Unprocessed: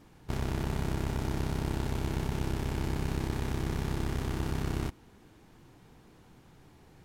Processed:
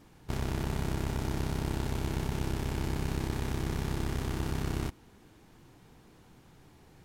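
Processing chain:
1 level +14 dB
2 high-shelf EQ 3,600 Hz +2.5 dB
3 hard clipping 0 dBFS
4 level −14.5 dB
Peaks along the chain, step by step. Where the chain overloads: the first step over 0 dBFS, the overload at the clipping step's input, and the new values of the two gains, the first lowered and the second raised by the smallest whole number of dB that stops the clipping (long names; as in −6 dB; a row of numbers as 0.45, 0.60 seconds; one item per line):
−4.0, −3.5, −3.5, −18.0 dBFS
no step passes full scale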